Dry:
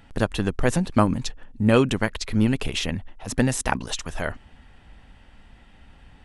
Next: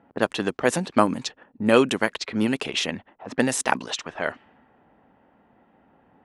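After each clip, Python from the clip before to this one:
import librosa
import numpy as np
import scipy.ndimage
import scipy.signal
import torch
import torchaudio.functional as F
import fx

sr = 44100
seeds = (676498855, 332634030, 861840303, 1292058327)

y = scipy.signal.sosfilt(scipy.signal.butter(2, 270.0, 'highpass', fs=sr, output='sos'), x)
y = fx.env_lowpass(y, sr, base_hz=860.0, full_db=-22.0)
y = y * 10.0 ** (2.5 / 20.0)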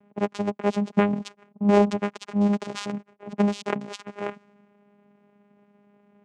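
y = fx.vocoder(x, sr, bands=4, carrier='saw', carrier_hz=204.0)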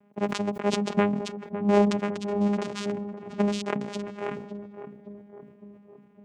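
y = fx.echo_filtered(x, sr, ms=556, feedback_pct=64, hz=830.0, wet_db=-9.0)
y = fx.sustainer(y, sr, db_per_s=68.0)
y = y * 10.0 ** (-2.5 / 20.0)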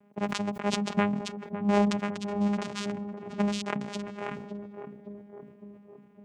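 y = fx.dynamic_eq(x, sr, hz=400.0, q=1.1, threshold_db=-39.0, ratio=4.0, max_db=-7)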